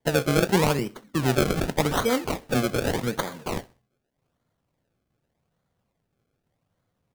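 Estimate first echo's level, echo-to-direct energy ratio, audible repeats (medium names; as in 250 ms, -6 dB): -21.5 dB, -21.0 dB, 2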